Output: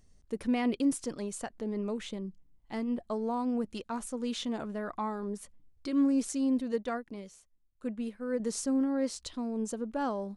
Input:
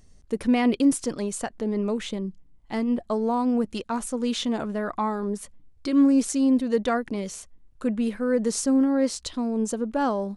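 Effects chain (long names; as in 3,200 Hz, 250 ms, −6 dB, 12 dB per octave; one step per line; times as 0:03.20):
0:06.72–0:08.40: expander for the loud parts 1.5 to 1, over −43 dBFS
level −8 dB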